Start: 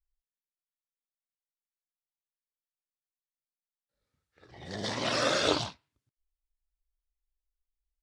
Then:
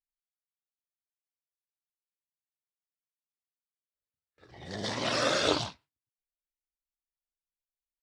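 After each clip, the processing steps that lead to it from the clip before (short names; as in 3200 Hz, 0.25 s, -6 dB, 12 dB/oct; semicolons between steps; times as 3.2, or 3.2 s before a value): gate with hold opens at -51 dBFS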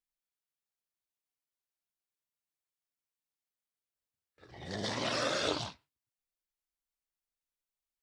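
compressor 2:1, threshold -33 dBFS, peak gain reduction 7 dB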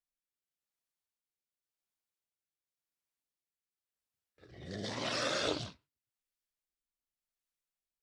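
rotary speaker horn 0.9 Hz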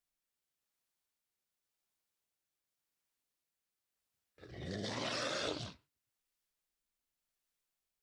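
compressor 2.5:1, threshold -43 dBFS, peak gain reduction 10 dB; gain +4 dB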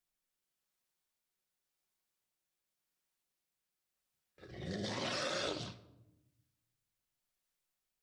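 shoebox room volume 3300 m³, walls furnished, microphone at 1 m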